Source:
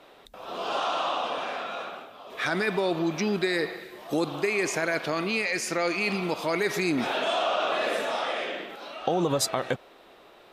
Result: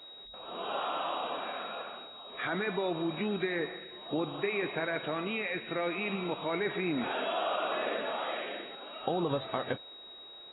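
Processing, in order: peaking EQ 5.8 kHz -14.5 dB 0.93 oct; whistle 3.8 kHz -41 dBFS; trim -6 dB; AAC 16 kbps 22.05 kHz

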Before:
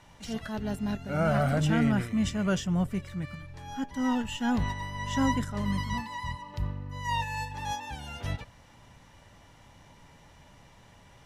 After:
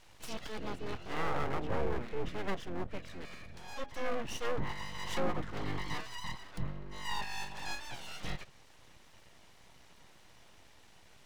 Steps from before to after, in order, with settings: low-pass that closes with the level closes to 990 Hz, closed at -21.5 dBFS; fifteen-band graphic EQ 160 Hz -11 dB, 1 kHz -4 dB, 4 kHz +3 dB; full-wave rectifier; trim -1 dB

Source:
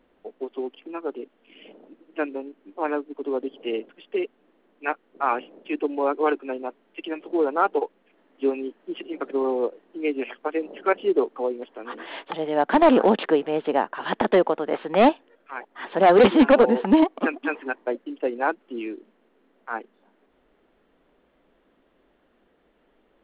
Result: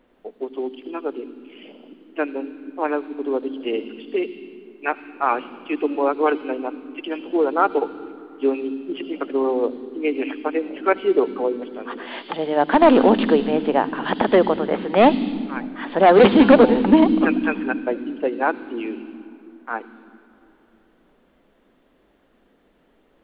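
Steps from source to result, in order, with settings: on a send: FFT filter 270 Hz 0 dB, 560 Hz -23 dB, 1.7 kHz -16 dB, 5.2 kHz +8 dB + reverberation RT60 3.0 s, pre-delay 63 ms, DRR 14 dB; on the sum: trim +3 dB

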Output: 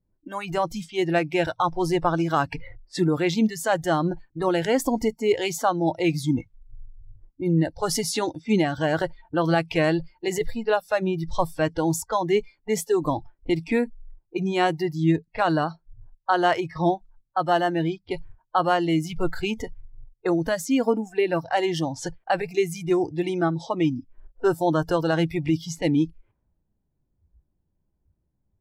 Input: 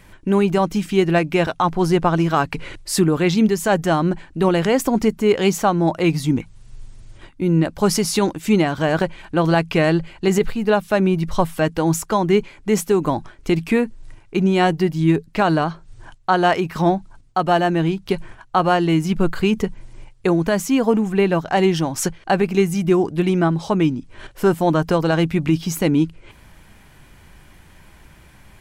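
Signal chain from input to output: level-controlled noise filter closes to 390 Hz, open at -16 dBFS; spectral noise reduction 22 dB; trim -4 dB

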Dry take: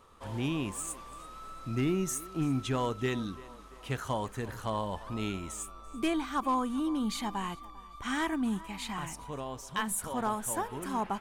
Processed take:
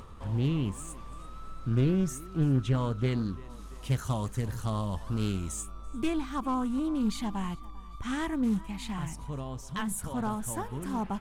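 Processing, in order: tone controls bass +13 dB, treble -2 dB, from 3.49 s treble +9 dB, from 5.60 s treble +2 dB; upward compressor, threshold -34 dBFS; loudspeaker Doppler distortion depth 0.4 ms; trim -3.5 dB

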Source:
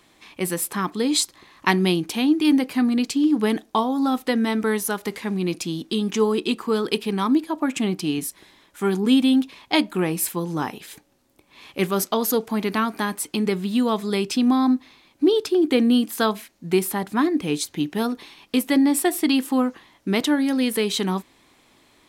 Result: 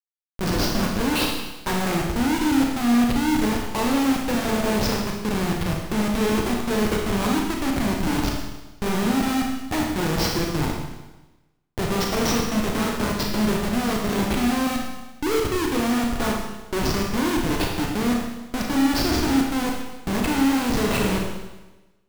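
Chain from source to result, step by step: knee-point frequency compression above 1.2 kHz 1.5:1; Schmitt trigger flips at -23.5 dBFS; Schroeder reverb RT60 1.1 s, combs from 26 ms, DRR -0.5 dB; trim -1.5 dB

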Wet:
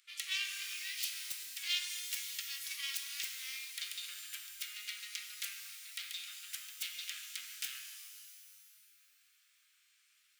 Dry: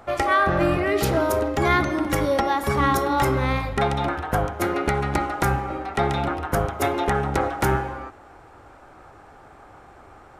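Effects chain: self-modulated delay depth 0.18 ms; inverse Chebyshev high-pass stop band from 810 Hz, stop band 60 dB; pitch-shifted reverb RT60 2.1 s, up +12 st, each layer -2 dB, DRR 5.5 dB; trim -5.5 dB

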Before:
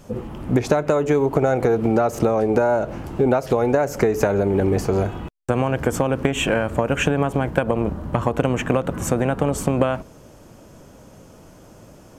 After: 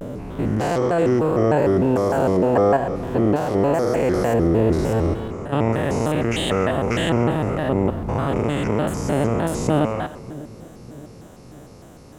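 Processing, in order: spectrogram pixelated in time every 200 ms; two-band feedback delay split 450 Hz, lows 600 ms, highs 132 ms, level -15 dB; vibrato with a chosen wave square 3.3 Hz, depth 250 cents; trim +2.5 dB

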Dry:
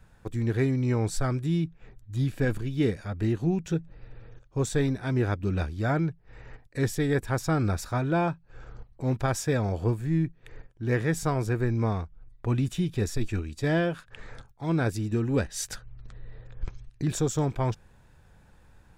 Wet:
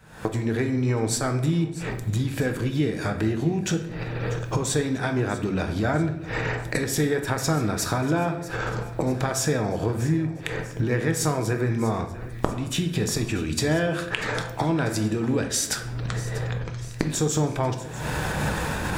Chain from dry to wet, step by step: recorder AGC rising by 75 dB/s; high-pass 210 Hz 6 dB/octave; compression, threshold -28 dBFS, peak gain reduction 16.5 dB; thinning echo 642 ms, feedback 54%, level -16.5 dB; simulated room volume 220 m³, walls mixed, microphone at 0.52 m; trim +6.5 dB

